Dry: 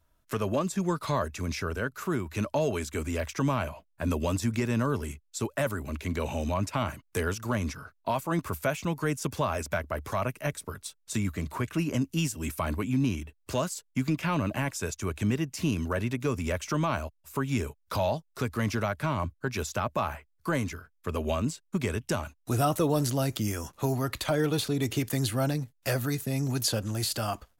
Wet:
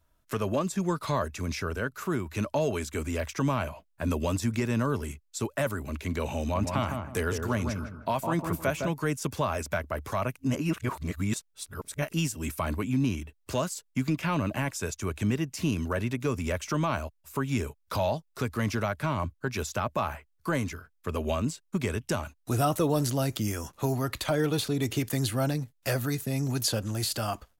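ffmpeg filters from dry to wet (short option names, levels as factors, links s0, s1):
-filter_complex "[0:a]asplit=3[s0][s1][s2];[s0]afade=t=out:st=6.54:d=0.02[s3];[s1]asplit=2[s4][s5];[s5]adelay=158,lowpass=f=1100:p=1,volume=0.631,asplit=2[s6][s7];[s7]adelay=158,lowpass=f=1100:p=1,volume=0.33,asplit=2[s8][s9];[s9]adelay=158,lowpass=f=1100:p=1,volume=0.33,asplit=2[s10][s11];[s11]adelay=158,lowpass=f=1100:p=1,volume=0.33[s12];[s4][s6][s8][s10][s12]amix=inputs=5:normalize=0,afade=t=in:st=6.54:d=0.02,afade=t=out:st=8.89:d=0.02[s13];[s2]afade=t=in:st=8.89:d=0.02[s14];[s3][s13][s14]amix=inputs=3:normalize=0,asplit=3[s15][s16][s17];[s15]atrim=end=10.362[s18];[s16]atrim=start=10.358:end=12.132,asetpts=PTS-STARTPTS,areverse[s19];[s17]atrim=start=12.128[s20];[s18][s19]acrossfade=d=0.004:c1=hsin:c2=hsin[s21];[s21][s20]acrossfade=d=0.004:c1=hsin:c2=hsin"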